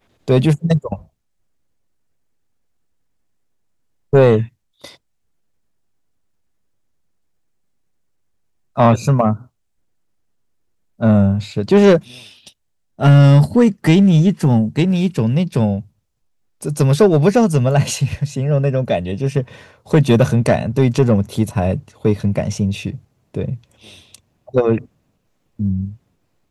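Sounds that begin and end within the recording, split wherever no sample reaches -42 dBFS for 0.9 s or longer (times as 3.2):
4.13–4.96
8.76–9.46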